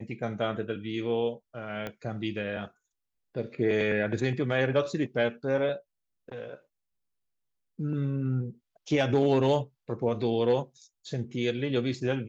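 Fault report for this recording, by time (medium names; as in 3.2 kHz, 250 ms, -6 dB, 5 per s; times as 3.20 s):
1.87 s: pop -21 dBFS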